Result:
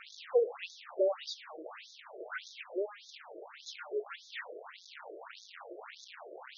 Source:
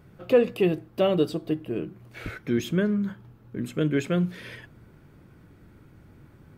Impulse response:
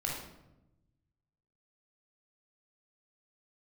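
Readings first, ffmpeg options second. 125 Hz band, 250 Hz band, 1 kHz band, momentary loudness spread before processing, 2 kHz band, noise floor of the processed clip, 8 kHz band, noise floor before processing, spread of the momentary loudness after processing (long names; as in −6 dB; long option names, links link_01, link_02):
below −40 dB, −24.0 dB, −7.0 dB, 17 LU, −7.5 dB, −56 dBFS, −7.0 dB, −54 dBFS, 18 LU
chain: -af "aeval=exprs='val(0)+0.5*0.0631*sgn(val(0))':channel_layout=same,afftfilt=real='re*between(b*sr/1024,460*pow(4900/460,0.5+0.5*sin(2*PI*1.7*pts/sr))/1.41,460*pow(4900/460,0.5+0.5*sin(2*PI*1.7*pts/sr))*1.41)':imag='im*between(b*sr/1024,460*pow(4900/460,0.5+0.5*sin(2*PI*1.7*pts/sr))/1.41,460*pow(4900/460,0.5+0.5*sin(2*PI*1.7*pts/sr))*1.41)':win_size=1024:overlap=0.75,volume=-7.5dB"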